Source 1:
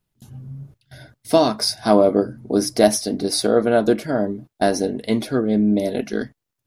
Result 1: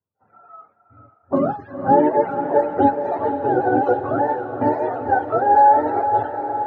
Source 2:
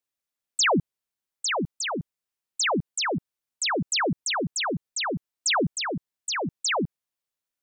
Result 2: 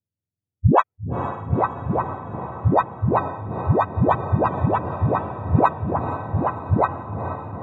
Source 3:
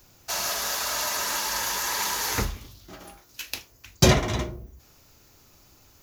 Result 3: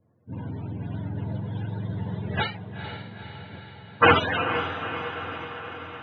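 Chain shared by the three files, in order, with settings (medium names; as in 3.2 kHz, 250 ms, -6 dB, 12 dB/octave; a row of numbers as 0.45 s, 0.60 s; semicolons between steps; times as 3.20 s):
spectrum inverted on a logarithmic axis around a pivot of 420 Hz; treble shelf 9 kHz +4.5 dB; level-controlled noise filter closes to 350 Hz, open at -19.5 dBFS; three-band isolator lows -14 dB, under 520 Hz, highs -21 dB, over 3.5 kHz; on a send: echo that smears into a reverb 469 ms, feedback 65%, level -9 dB; on the sum: peak normalisation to -3 dBFS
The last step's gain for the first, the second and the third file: +7.0 dB, +18.0 dB, +10.0 dB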